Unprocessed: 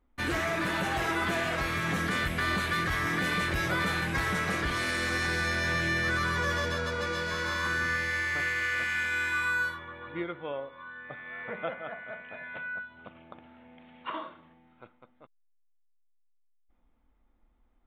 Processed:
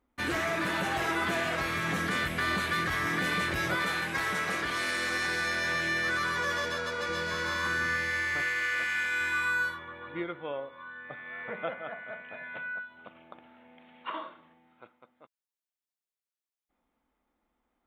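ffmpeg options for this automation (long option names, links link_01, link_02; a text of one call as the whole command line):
ffmpeg -i in.wav -af "asetnsamples=nb_out_samples=441:pad=0,asendcmd='3.75 highpass f 370;7.09 highpass f 110;8.42 highpass f 290;9.21 highpass f 120;12.72 highpass f 300',highpass=frequency=130:poles=1" out.wav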